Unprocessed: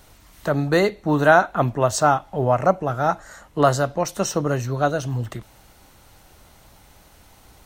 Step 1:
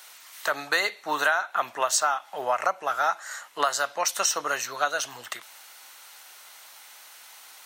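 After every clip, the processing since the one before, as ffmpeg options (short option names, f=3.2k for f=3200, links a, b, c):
-af "highpass=1.3k,acompressor=threshold=-27dB:ratio=12,volume=7.5dB"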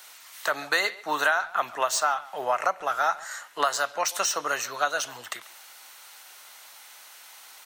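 -filter_complex "[0:a]acrossover=split=110|5000[a][b][c];[c]asoftclip=type=hard:threshold=-27dB[d];[a][b][d]amix=inputs=3:normalize=0,asplit=2[e][f];[f]adelay=140,highpass=300,lowpass=3.4k,asoftclip=type=hard:threshold=-17.5dB,volume=-19dB[g];[e][g]amix=inputs=2:normalize=0"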